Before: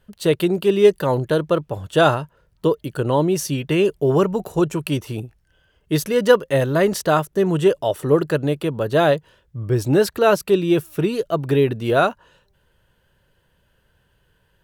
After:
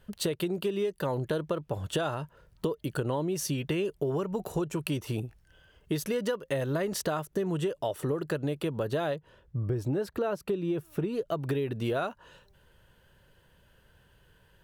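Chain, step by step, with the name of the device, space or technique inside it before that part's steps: 9.16–11.28 s: treble shelf 2 kHz -10 dB; serial compression, leveller first (compression 3:1, threshold -17 dBFS, peak gain reduction 7.5 dB; compression 4:1, threshold -30 dBFS, peak gain reduction 13.5 dB); trim +1 dB

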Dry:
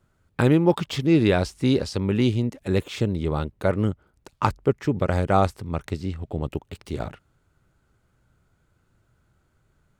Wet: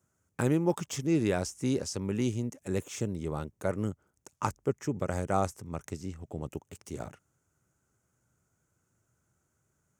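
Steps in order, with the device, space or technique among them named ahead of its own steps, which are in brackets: budget condenser microphone (high-pass 88 Hz; resonant high shelf 5.1 kHz +7.5 dB, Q 3); trim -8.5 dB

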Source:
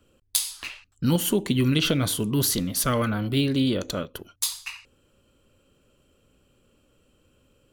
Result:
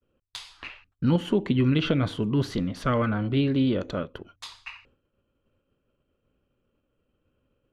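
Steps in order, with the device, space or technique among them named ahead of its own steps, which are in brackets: hearing-loss simulation (low-pass 2.3 kHz 12 dB/octave; expander -55 dBFS)

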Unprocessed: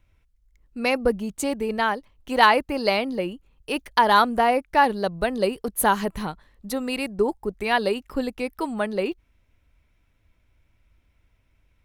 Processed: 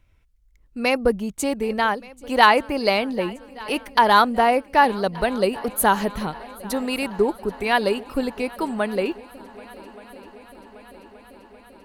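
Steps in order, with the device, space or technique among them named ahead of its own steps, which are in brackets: multi-head tape echo (multi-head delay 392 ms, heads second and third, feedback 70%, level -23 dB; wow and flutter 10 cents); trim +2 dB

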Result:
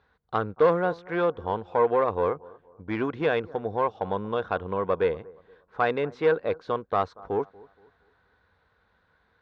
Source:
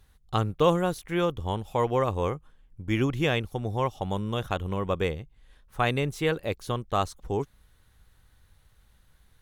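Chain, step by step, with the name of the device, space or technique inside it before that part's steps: analogue delay pedal into a guitar amplifier (bucket-brigade echo 235 ms, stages 2048, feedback 35%, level -23.5 dB; valve stage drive 19 dB, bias 0.3; cabinet simulation 110–3900 Hz, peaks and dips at 130 Hz -10 dB, 470 Hz +9 dB, 700 Hz +5 dB, 1 kHz +7 dB, 1.5 kHz +9 dB, 3 kHz -7 dB); trim -1 dB

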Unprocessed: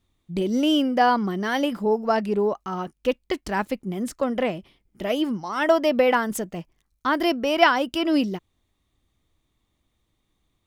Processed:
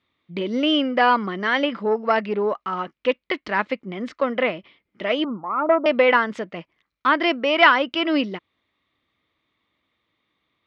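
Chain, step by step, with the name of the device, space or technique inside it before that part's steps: 5.24–5.86 s: Chebyshev low-pass 1.4 kHz, order 8; guitar amplifier (valve stage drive 8 dB, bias 0.25; tone controls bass -11 dB, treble 0 dB; cabinet simulation 97–4000 Hz, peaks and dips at 380 Hz -4 dB, 770 Hz -6 dB, 1.2 kHz +3 dB, 2.1 kHz +6 dB); trim +5 dB

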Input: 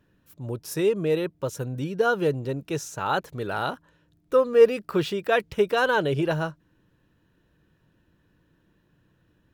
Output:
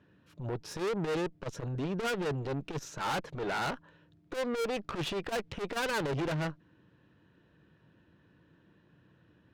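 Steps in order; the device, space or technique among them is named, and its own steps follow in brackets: valve radio (band-pass 86–4000 Hz; valve stage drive 35 dB, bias 0.65; transformer saturation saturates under 120 Hz); trim +5.5 dB

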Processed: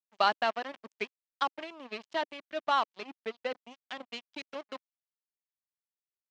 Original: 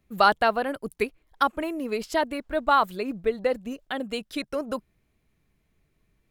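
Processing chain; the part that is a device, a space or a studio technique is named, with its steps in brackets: blown loudspeaker (crossover distortion -32 dBFS; cabinet simulation 240–5900 Hz, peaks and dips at 300 Hz -4 dB, 460 Hz -7 dB, 1.4 kHz -4 dB, 3 kHz +4 dB); trim -4.5 dB

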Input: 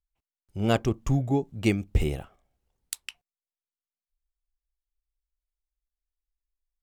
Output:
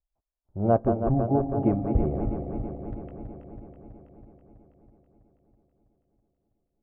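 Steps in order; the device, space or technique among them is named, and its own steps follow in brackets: backward echo that repeats 163 ms, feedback 81%, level -6.5 dB; under water (low-pass 1.1 kHz 24 dB/octave; peaking EQ 640 Hz +7.5 dB 0.42 oct)

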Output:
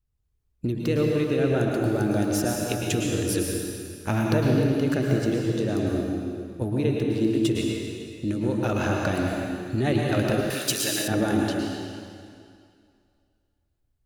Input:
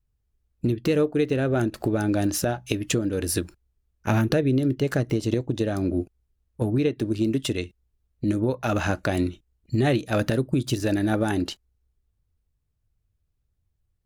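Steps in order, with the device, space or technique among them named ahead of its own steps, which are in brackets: stairwell (reverberation RT60 2.3 s, pre-delay 101 ms, DRR -1 dB); 10.50–11.08 s: tilt EQ +4.5 dB/octave; trim -3.5 dB

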